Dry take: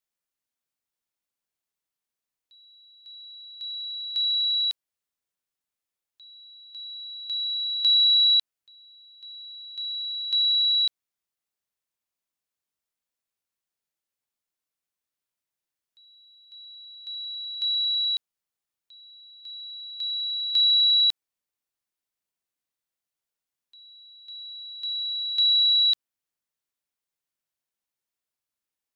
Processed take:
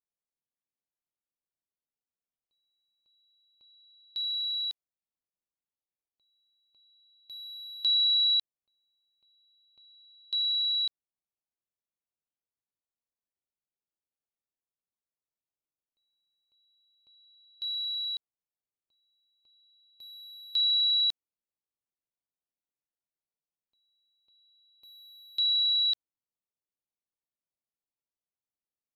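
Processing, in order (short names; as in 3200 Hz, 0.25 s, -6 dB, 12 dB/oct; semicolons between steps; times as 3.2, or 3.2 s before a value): Wiener smoothing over 25 samples; gain -5 dB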